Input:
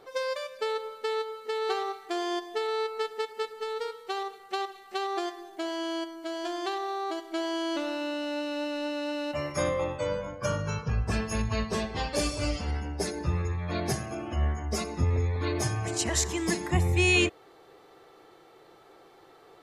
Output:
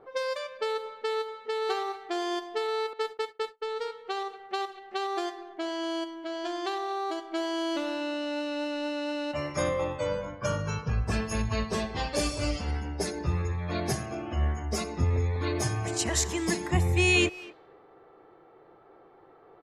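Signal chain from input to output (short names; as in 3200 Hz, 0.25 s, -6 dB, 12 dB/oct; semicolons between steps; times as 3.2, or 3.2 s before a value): 2.93–3.77 gate -36 dBFS, range -36 dB; speakerphone echo 0.24 s, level -18 dB; low-pass opened by the level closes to 1300 Hz, open at -26.5 dBFS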